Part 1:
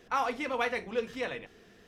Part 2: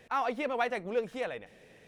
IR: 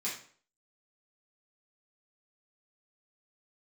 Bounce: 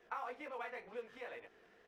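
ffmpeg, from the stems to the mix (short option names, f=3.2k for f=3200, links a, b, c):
-filter_complex "[0:a]flanger=delay=16.5:depth=5.3:speed=2.1,volume=-1.5dB[a];[1:a]acompressor=threshold=-43dB:ratio=2.5,acrusher=bits=7:mix=0:aa=0.5,adelay=20,volume=-9.5dB,asplit=2[b][c];[c]apad=whole_len=82871[d];[a][d]sidechaincompress=threshold=-54dB:ratio=8:attack=7.3:release=245[e];[e][b]amix=inputs=2:normalize=0,acrossover=split=410 2500:gain=0.224 1 0.251[f][g][h];[f][g][h]amix=inputs=3:normalize=0"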